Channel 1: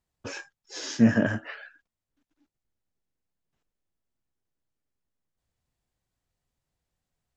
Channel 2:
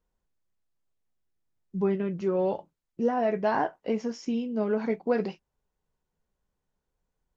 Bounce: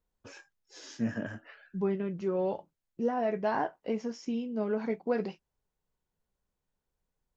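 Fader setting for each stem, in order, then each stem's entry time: -12.5, -4.0 dB; 0.00, 0.00 s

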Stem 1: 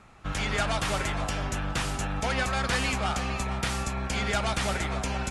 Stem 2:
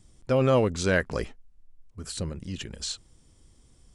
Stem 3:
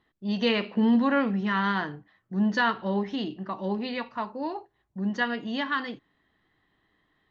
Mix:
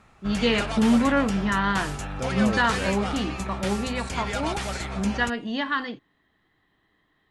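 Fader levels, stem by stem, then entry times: -2.5, -8.5, +2.0 dB; 0.00, 1.90, 0.00 s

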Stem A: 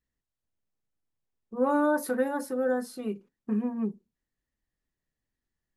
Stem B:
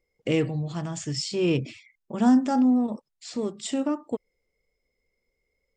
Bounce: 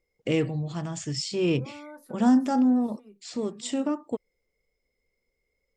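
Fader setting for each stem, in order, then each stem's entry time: -19.5, -1.0 dB; 0.00, 0.00 s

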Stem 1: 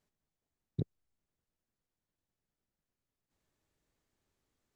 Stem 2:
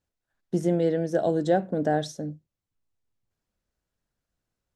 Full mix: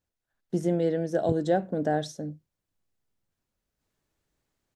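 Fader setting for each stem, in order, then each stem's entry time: +2.0, -2.0 dB; 0.50, 0.00 s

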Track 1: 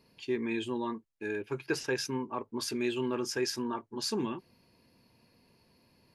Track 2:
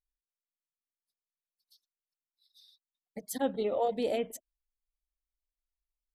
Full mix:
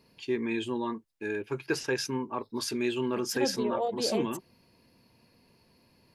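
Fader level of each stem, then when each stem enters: +2.0, -1.0 dB; 0.00, 0.00 s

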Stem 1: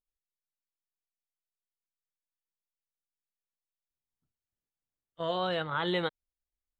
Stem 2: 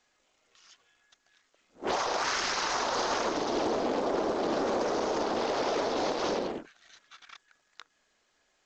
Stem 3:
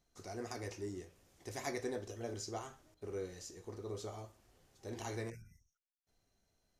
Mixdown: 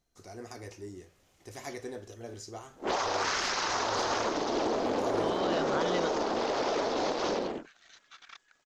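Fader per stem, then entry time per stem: -4.5, -0.5, -0.5 dB; 0.00, 1.00, 0.00 s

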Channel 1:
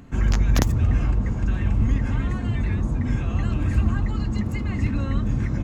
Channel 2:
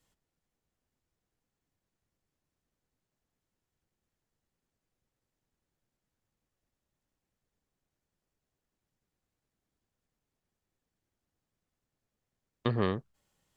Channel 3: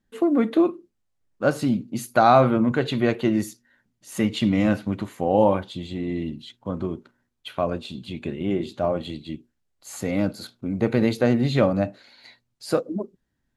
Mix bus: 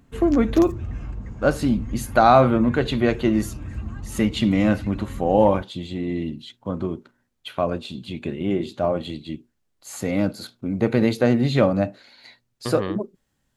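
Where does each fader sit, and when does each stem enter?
-11.0, +0.5, +1.5 dB; 0.00, 0.00, 0.00 s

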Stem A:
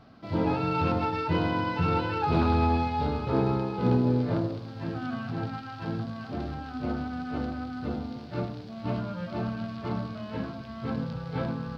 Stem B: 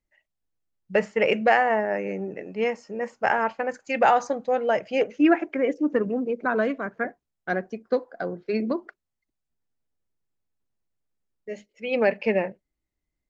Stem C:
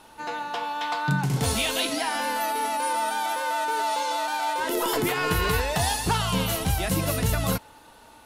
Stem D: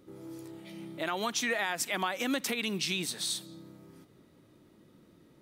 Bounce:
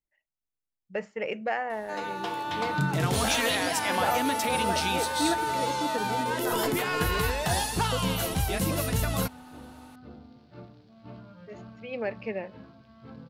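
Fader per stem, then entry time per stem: -14.5, -10.5, -3.0, +1.0 dB; 2.20, 0.00, 1.70, 1.95 s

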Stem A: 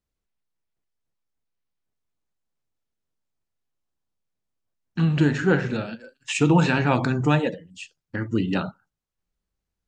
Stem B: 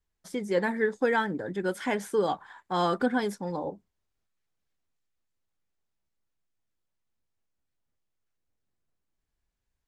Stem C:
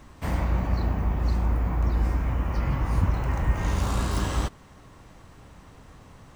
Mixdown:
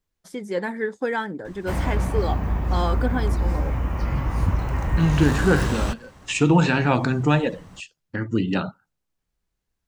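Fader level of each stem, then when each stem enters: +1.0, 0.0, +1.5 dB; 0.00, 0.00, 1.45 s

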